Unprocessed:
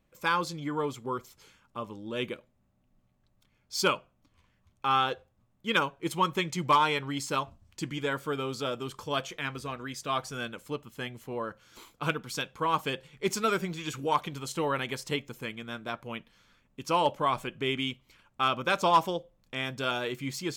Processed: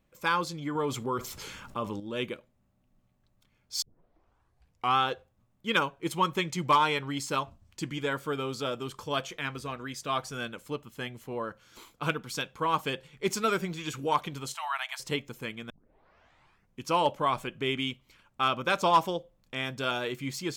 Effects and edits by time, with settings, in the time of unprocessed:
0:00.75–0:02.00: envelope flattener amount 50%
0:03.82: tape start 1.14 s
0:14.54–0:15.00: linear-phase brick-wall high-pass 620 Hz
0:15.70: tape start 1.15 s

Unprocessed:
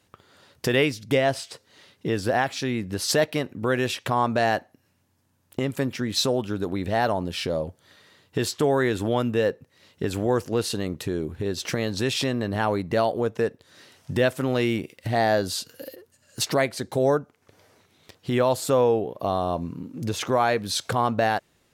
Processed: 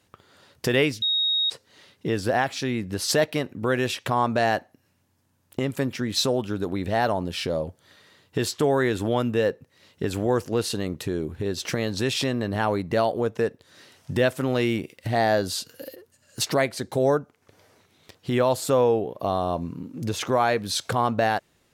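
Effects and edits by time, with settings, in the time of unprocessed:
0:01.02–0:01.50: beep over 3,760 Hz −20 dBFS

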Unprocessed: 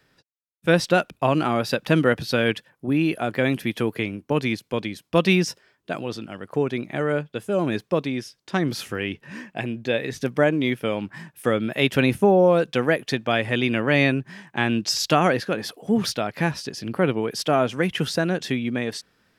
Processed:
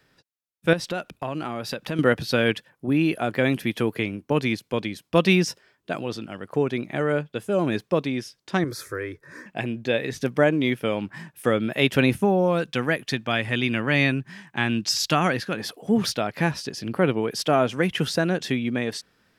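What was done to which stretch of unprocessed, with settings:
0:00.73–0:01.99: downward compressor 2.5 to 1, threshold −29 dBFS
0:08.64–0:09.46: phaser with its sweep stopped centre 780 Hz, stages 6
0:12.16–0:15.60: parametric band 510 Hz −6 dB 1.5 octaves

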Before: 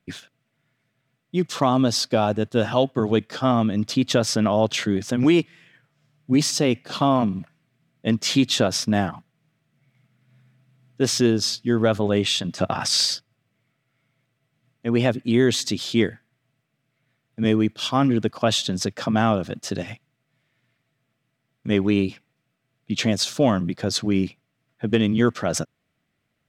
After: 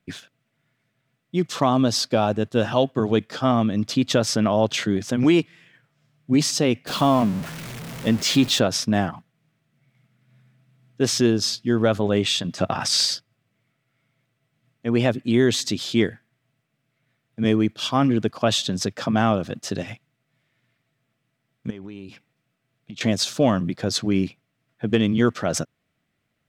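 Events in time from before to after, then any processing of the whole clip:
0:06.87–0:08.59: converter with a step at zero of −29 dBFS
0:21.70–0:23.01: downward compressor 12 to 1, threshold −33 dBFS

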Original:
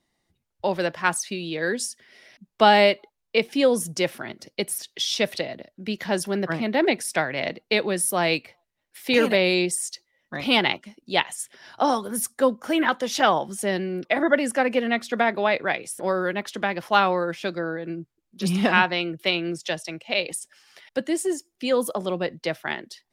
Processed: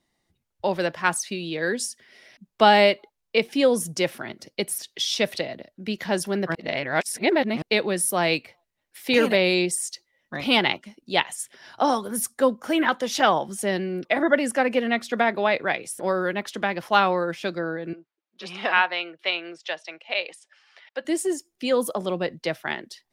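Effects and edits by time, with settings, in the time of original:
0:06.55–0:07.62: reverse
0:17.93–0:21.05: band-pass filter 620–3,600 Hz

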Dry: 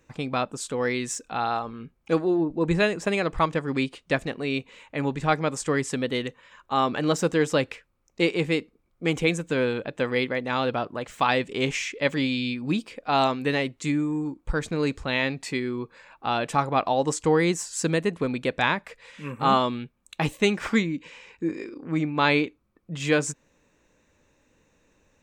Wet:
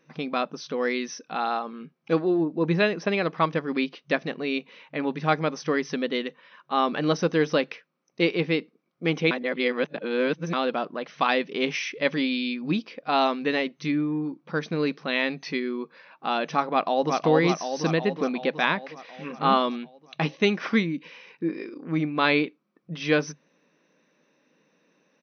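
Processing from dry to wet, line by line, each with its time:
0:09.31–0:10.53: reverse
0:16.68–0:17.16: delay throw 370 ms, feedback 65%, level −3 dB
whole clip: notch filter 880 Hz, Q 16; brick-wall band-pass 150–6,200 Hz

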